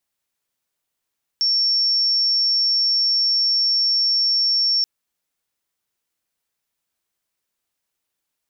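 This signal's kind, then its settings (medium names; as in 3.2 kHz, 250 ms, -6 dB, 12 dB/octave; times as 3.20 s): tone sine 5.46 kHz -15.5 dBFS 3.43 s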